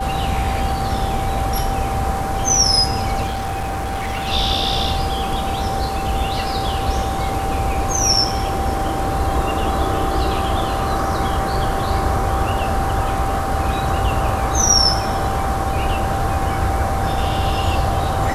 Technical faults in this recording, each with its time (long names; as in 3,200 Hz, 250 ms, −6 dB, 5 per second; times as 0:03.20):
whistle 780 Hz −23 dBFS
0:03.26–0:04.29: clipping −20 dBFS